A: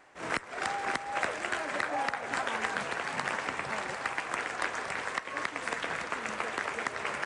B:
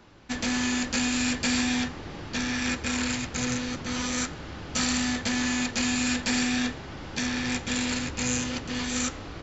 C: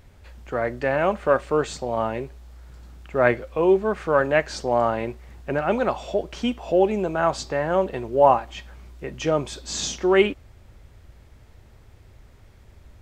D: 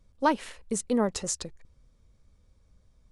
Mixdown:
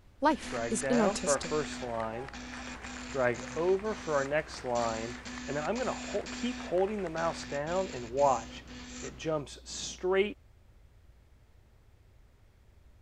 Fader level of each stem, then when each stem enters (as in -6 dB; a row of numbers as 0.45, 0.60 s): -14.5, -15.5, -10.5, -2.5 dB; 0.20, 0.00, 0.00, 0.00 s